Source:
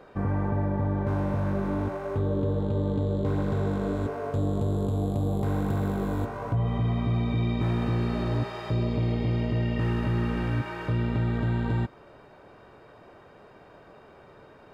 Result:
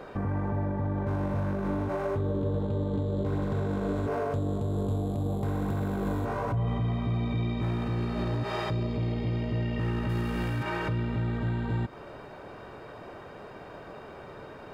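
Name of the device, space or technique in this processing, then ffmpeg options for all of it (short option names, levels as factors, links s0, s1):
stacked limiters: -filter_complex "[0:a]asettb=1/sr,asplit=3[s0][s1][s2];[s0]atrim=end=10.094[s3];[s1]atrim=start=10.09:end=10.63,asetpts=PTS-STARTPTS,afade=t=in:d=0.004:c=qsin,afade=t=out:st=0.536:d=0.004:c=qsin,aemphasis=mode=production:type=50kf[s4];[s2]atrim=start=10.626[s5];[s3][s4]acrossfade=d=0.004:c1=hsin:c2=qsin[s6];[s6][s5]acrossfade=d=0.004:c1=qsin:c2=hsin,alimiter=limit=0.112:level=0:latency=1:release=225,alimiter=level_in=1.06:limit=0.0631:level=0:latency=1:release=27,volume=0.944,alimiter=level_in=1.78:limit=0.0631:level=0:latency=1:release=102,volume=0.562,volume=2.24"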